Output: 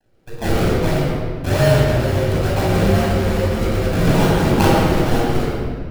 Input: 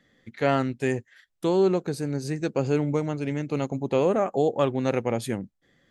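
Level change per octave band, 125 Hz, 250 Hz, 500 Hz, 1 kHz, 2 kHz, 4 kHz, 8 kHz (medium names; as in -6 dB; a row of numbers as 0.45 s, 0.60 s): +13.5 dB, +8.0 dB, +5.5 dB, +9.0 dB, +11.5 dB, +14.0 dB, +12.0 dB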